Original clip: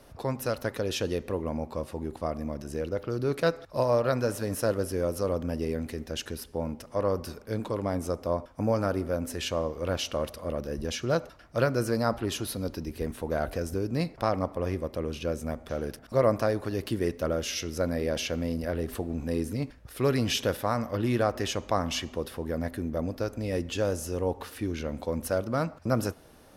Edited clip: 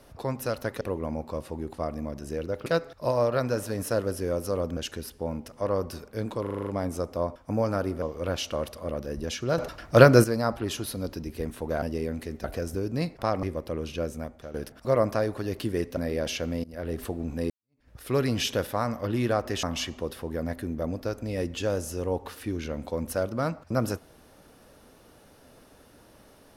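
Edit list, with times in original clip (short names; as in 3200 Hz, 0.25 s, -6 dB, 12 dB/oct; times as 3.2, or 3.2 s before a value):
0.81–1.24 cut
3.09–3.38 cut
5.49–6.11 move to 13.43
7.76 stutter 0.04 s, 7 plays
9.12–9.63 cut
11.19–11.85 gain +11 dB
14.42–14.7 cut
15.31–15.81 fade out, to -11 dB
17.24–17.87 cut
18.54–18.83 fade in, from -24 dB
19.4–19.79 fade in exponential
21.53–21.78 cut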